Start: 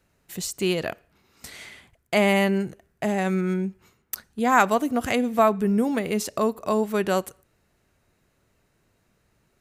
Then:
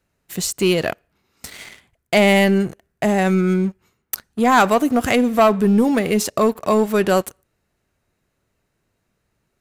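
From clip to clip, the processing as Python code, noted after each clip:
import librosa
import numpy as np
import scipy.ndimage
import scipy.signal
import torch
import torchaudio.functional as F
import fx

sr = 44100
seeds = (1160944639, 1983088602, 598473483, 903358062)

y = fx.leveller(x, sr, passes=2)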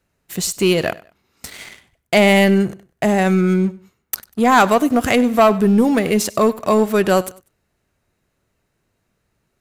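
y = fx.echo_feedback(x, sr, ms=97, feedback_pct=28, wet_db=-20.0)
y = F.gain(torch.from_numpy(y), 1.5).numpy()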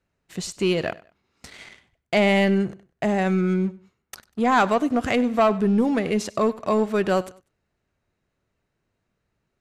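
y = fx.air_absorb(x, sr, metres=69.0)
y = F.gain(torch.from_numpy(y), -6.0).numpy()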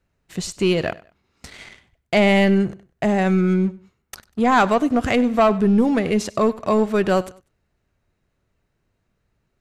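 y = fx.low_shelf(x, sr, hz=89.0, db=8.0)
y = F.gain(torch.from_numpy(y), 2.5).numpy()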